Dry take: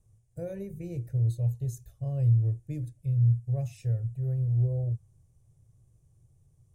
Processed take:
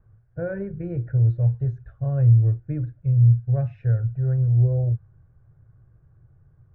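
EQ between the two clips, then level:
low-pass with resonance 1,500 Hz, resonance Q 7
high-frequency loss of the air 230 metres
+7.5 dB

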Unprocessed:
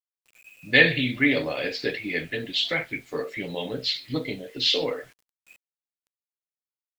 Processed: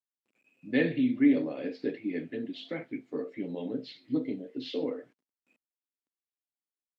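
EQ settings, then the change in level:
resonant band-pass 260 Hz, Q 2.5
spectral tilt +2 dB per octave
+6.5 dB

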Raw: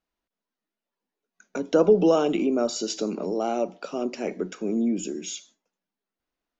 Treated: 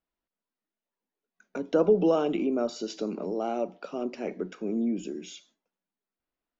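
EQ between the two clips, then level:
high-frequency loss of the air 130 metres
−3.5 dB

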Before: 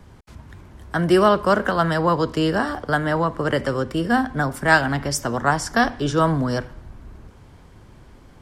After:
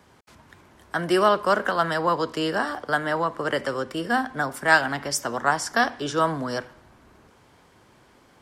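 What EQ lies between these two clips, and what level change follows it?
high-pass filter 480 Hz 6 dB per octave
−1.0 dB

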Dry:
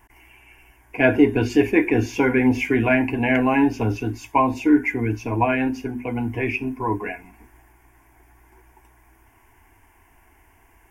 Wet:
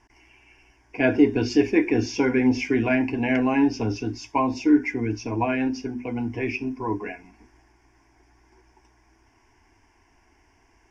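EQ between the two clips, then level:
low-pass with resonance 5,400 Hz, resonance Q 6.4
parametric band 290 Hz +5 dB 1.8 octaves
−6.5 dB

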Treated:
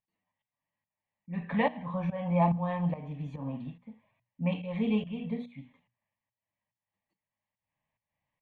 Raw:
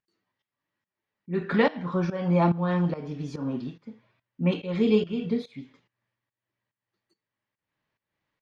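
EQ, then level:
low-pass filter 1,900 Hz 6 dB per octave
mains-hum notches 60/120/180/240 Hz
phaser with its sweep stopped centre 1,400 Hz, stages 6
0.0 dB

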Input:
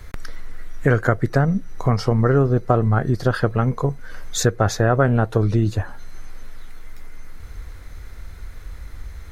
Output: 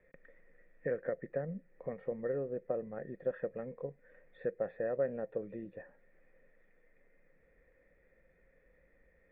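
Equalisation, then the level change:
formant resonators in series e
low shelf with overshoot 130 Hz −8 dB, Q 3
−8.0 dB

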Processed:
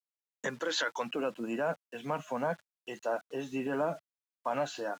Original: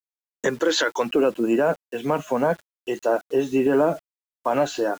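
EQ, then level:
high-pass filter 110 Hz
parametric band 370 Hz −10 dB 0.9 octaves
high-shelf EQ 11,000 Hz −11.5 dB
−8.0 dB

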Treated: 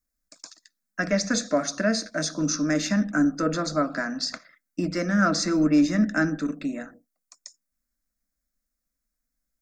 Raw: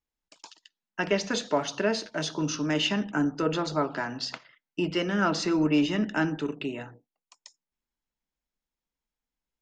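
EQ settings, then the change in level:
low-shelf EQ 280 Hz +9 dB
high-shelf EQ 2,500 Hz +10 dB
phaser with its sweep stopped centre 600 Hz, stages 8
+1.5 dB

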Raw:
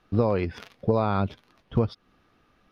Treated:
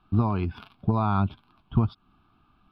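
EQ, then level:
high-shelf EQ 3,300 Hz −11.5 dB
phaser with its sweep stopped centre 1,900 Hz, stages 6
+3.5 dB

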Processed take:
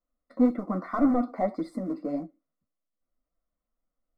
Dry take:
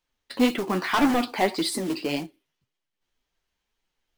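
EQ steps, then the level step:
Savitzky-Golay smoothing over 65 samples
phaser with its sweep stopped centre 590 Hz, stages 8
0.0 dB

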